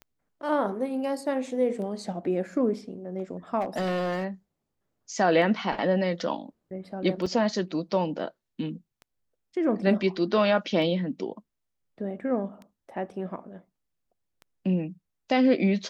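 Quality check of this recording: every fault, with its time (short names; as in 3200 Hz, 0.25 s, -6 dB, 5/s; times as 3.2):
tick 33 1/3 rpm -30 dBFS
3.6–4.25 clipped -24 dBFS
7.26 gap 4.9 ms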